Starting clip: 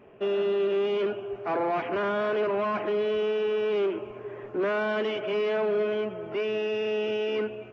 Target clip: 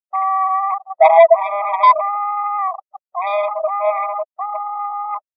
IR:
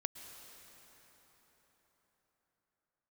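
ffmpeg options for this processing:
-af "afftfilt=real='re*gte(hypot(re,im),0.2)':imag='im*gte(hypot(re,im),0.2)':win_size=1024:overlap=0.75,highshelf=f=1.7k:t=q:w=1.5:g=-13,aeval=exprs='0.133*(cos(1*acos(clip(val(0)/0.133,-1,1)))-cos(1*PI/2))+0.0119*(cos(4*acos(clip(val(0)/0.133,-1,1)))-cos(4*PI/2))+0.0237*(cos(5*acos(clip(val(0)/0.133,-1,1)))-cos(5*PI/2))+0.00168*(cos(8*acos(clip(val(0)/0.133,-1,1)))-cos(8*PI/2))':c=same,atempo=1.5,asubboost=boost=5.5:cutoff=70,asetrate=42336,aresample=44100,alimiter=level_in=23.5dB:limit=-1dB:release=50:level=0:latency=1,afftfilt=real='re*eq(mod(floor(b*sr/1024/640),2),1)':imag='im*eq(mod(floor(b*sr/1024/640),2),1)':win_size=1024:overlap=0.75,volume=2dB"

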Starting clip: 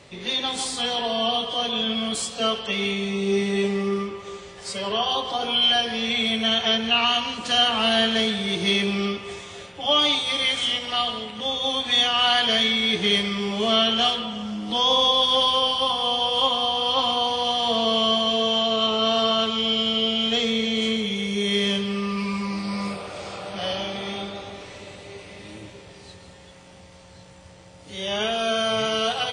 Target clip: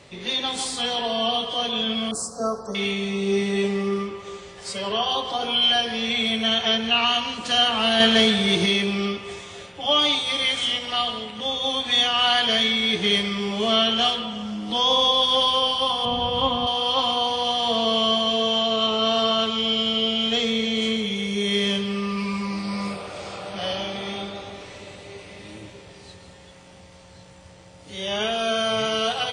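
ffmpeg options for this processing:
-filter_complex "[0:a]asettb=1/sr,asplit=3[a][b][c];[a]atrim=end=2.114[d];[b]atrim=start=2.11:end=2.75,asetpts=PTS-STARTPTS,afade=t=in:d=0.004:c=qsin,afade=t=out:st=0.636:d=0.004:c=qsin,asuperstop=centerf=2700:order=8:qfactor=0.72[e];[c]atrim=start=2.746[f];[d][e]acrossfade=d=0.004:c1=hsin:c2=qsin[g];[g][f]acrossfade=d=0.004:c1=qsin:c2=hsin,asettb=1/sr,asplit=3[h][i][j];[h]atrim=end=8.004[k];[i]atrim=start=8:end=8.66,asetpts=PTS-STARTPTS,afade=t=in:d=0.004:c=qsin,afade=t=out:st=0.656:d=0.004:c=qsin,acontrast=33[l];[j]atrim=start=8.656[m];[k][l]acrossfade=d=0.004:c1=hsin:c2=qsin[n];[n][m]acrossfade=d=0.004:c1=qsin:c2=hsin,asettb=1/sr,asplit=3[o][p][q];[o]atrim=end=16.054[r];[p]atrim=start=16.05:end=16.67,asetpts=PTS-STARTPTS,afade=t=in:d=0.004:c=qsin,afade=t=out:st=0.616:d=0.004:c=qsin,bass=f=250:g=15,treble=f=4k:g=-12[s];[q]atrim=start=16.666[t];[r][s]acrossfade=d=0.004:c1=hsin:c2=qsin[u];[u][t]acrossfade=d=0.004:c1=qsin:c2=hsin"

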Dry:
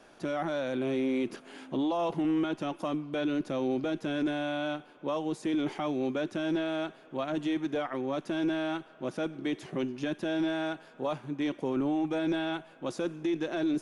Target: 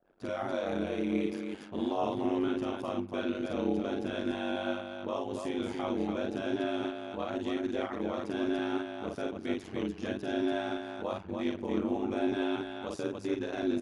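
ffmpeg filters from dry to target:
-af "aecho=1:1:46.65|288.6:0.794|0.631,aeval=exprs='val(0)*sin(2*PI*48*n/s)':c=same,anlmdn=0.00158,volume=-2dB"

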